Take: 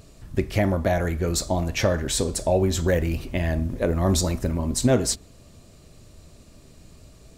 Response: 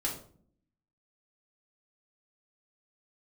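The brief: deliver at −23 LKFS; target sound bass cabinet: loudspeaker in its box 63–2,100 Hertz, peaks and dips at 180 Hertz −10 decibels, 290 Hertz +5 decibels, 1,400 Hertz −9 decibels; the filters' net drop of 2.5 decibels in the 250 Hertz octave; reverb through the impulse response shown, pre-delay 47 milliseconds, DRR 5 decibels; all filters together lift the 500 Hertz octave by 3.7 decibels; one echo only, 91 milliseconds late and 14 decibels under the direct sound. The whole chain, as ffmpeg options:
-filter_complex "[0:a]equalizer=frequency=250:width_type=o:gain=-5.5,equalizer=frequency=500:width_type=o:gain=6,aecho=1:1:91:0.2,asplit=2[link_01][link_02];[1:a]atrim=start_sample=2205,adelay=47[link_03];[link_02][link_03]afir=irnorm=-1:irlink=0,volume=-9dB[link_04];[link_01][link_04]amix=inputs=2:normalize=0,highpass=frequency=63:width=0.5412,highpass=frequency=63:width=1.3066,equalizer=frequency=180:width_type=q:width=4:gain=-10,equalizer=frequency=290:width_type=q:width=4:gain=5,equalizer=frequency=1400:width_type=q:width=4:gain=-9,lowpass=frequency=2100:width=0.5412,lowpass=frequency=2100:width=1.3066,volume=-1dB"

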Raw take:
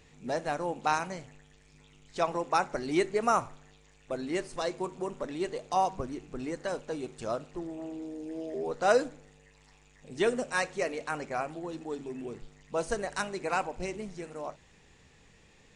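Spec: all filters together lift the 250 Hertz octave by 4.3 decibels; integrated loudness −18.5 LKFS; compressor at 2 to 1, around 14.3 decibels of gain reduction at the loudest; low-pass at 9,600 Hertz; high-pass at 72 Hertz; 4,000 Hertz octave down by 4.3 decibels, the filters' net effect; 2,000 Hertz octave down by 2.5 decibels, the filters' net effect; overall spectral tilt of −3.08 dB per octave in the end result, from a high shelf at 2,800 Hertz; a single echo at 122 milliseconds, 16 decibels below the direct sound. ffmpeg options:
ffmpeg -i in.wav -af "highpass=72,lowpass=9600,equalizer=frequency=250:width_type=o:gain=6,equalizer=frequency=2000:width_type=o:gain=-3.5,highshelf=frequency=2800:gain=4.5,equalizer=frequency=4000:width_type=o:gain=-8.5,acompressor=threshold=-46dB:ratio=2,aecho=1:1:122:0.158,volume=24dB" out.wav

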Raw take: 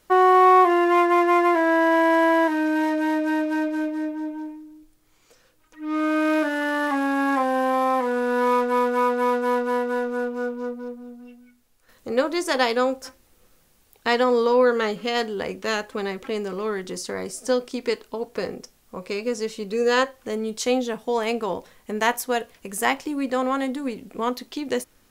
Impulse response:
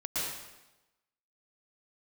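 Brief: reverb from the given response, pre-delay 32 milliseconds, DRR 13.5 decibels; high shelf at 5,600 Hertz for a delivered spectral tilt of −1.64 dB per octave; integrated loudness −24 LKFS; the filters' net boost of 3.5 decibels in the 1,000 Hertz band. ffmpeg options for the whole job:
-filter_complex "[0:a]equalizer=frequency=1000:width_type=o:gain=4,highshelf=frequency=5600:gain=5.5,asplit=2[link_01][link_02];[1:a]atrim=start_sample=2205,adelay=32[link_03];[link_02][link_03]afir=irnorm=-1:irlink=0,volume=-19.5dB[link_04];[link_01][link_04]amix=inputs=2:normalize=0,volume=-3.5dB"

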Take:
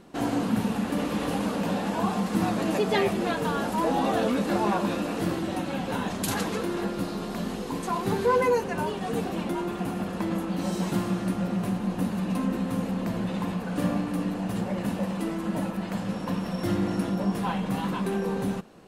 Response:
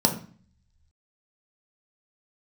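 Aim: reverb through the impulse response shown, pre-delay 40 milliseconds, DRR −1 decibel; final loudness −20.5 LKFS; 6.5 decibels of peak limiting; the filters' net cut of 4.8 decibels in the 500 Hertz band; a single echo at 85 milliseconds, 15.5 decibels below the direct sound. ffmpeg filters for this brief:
-filter_complex "[0:a]equalizer=frequency=500:width_type=o:gain=-6,alimiter=limit=-20dB:level=0:latency=1,aecho=1:1:85:0.168,asplit=2[link_01][link_02];[1:a]atrim=start_sample=2205,adelay=40[link_03];[link_02][link_03]afir=irnorm=-1:irlink=0,volume=-12.5dB[link_04];[link_01][link_04]amix=inputs=2:normalize=0,volume=-0.5dB"

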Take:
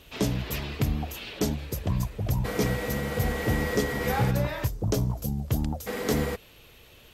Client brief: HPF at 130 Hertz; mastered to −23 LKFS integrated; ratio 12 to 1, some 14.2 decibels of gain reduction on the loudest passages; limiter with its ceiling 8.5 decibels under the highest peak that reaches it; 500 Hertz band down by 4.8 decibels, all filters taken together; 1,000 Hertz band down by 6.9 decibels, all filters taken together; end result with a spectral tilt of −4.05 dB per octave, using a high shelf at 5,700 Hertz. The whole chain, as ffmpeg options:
ffmpeg -i in.wav -af "highpass=130,equalizer=frequency=500:width_type=o:gain=-4,equalizer=frequency=1000:width_type=o:gain=-8,highshelf=frequency=5700:gain=4,acompressor=threshold=-38dB:ratio=12,volume=20.5dB,alimiter=limit=-12.5dB:level=0:latency=1" out.wav

